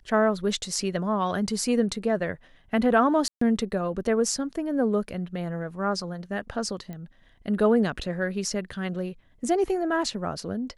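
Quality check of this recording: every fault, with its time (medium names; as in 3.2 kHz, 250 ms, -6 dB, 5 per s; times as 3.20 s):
3.28–3.41 s: dropout 134 ms
6.93 s: pop -26 dBFS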